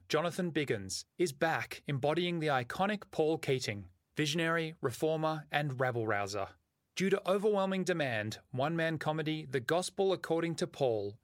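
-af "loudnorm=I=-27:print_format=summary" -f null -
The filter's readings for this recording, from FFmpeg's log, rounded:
Input Integrated:    -33.8 LUFS
Input True Peak:     -14.7 dBTP
Input LRA:             0.7 LU
Input Threshold:     -43.9 LUFS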